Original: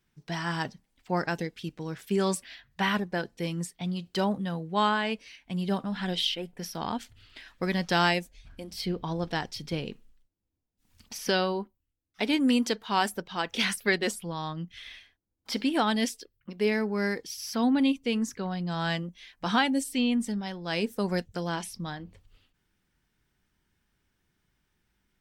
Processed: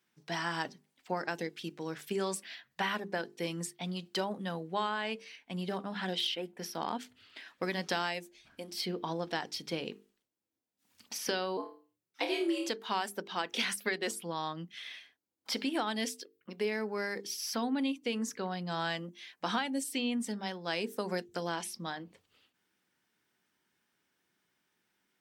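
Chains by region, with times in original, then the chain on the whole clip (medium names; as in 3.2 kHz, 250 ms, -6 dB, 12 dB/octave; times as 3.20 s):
5.24–7.63 s: hard clipper -21 dBFS + peaking EQ 11 kHz -3.5 dB 2.8 oct
11.57–12.69 s: frequency shift +82 Hz + comb of notches 200 Hz + flutter echo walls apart 4.6 m, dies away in 0.36 s
whole clip: high-pass 250 Hz 12 dB/octave; compression, threshold -29 dBFS; hum notches 50/100/150/200/250/300/350/400/450 Hz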